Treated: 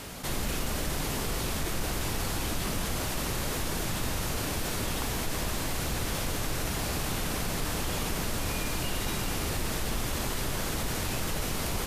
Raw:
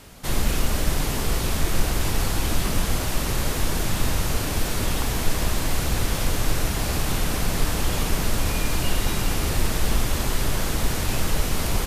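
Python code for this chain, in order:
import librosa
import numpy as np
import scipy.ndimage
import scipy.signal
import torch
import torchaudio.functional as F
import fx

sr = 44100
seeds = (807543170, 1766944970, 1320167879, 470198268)

y = fx.low_shelf(x, sr, hz=73.0, db=-7.5)
y = fx.env_flatten(y, sr, amount_pct=50)
y = y * librosa.db_to_amplitude(-8.0)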